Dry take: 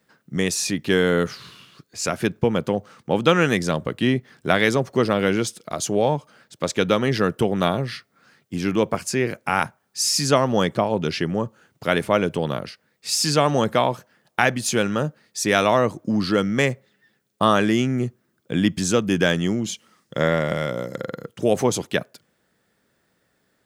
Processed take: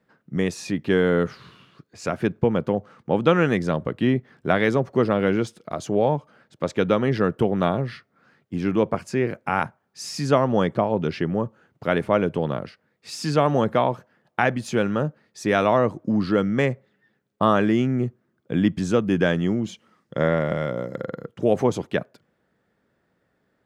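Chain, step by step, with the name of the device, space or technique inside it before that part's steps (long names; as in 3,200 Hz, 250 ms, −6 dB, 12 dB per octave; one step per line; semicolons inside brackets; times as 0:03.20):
through cloth (high-shelf EQ 3,500 Hz −17.5 dB)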